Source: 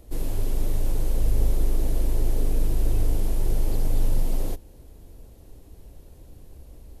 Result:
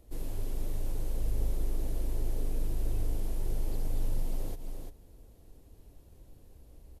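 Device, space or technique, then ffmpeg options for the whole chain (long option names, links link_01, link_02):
ducked delay: -filter_complex "[0:a]asplit=3[link_01][link_02][link_03];[link_02]adelay=344,volume=-6dB[link_04];[link_03]apad=whole_len=323894[link_05];[link_04][link_05]sidechaincompress=threshold=-32dB:ratio=8:attack=16:release=128[link_06];[link_01][link_06]amix=inputs=2:normalize=0,volume=-9dB"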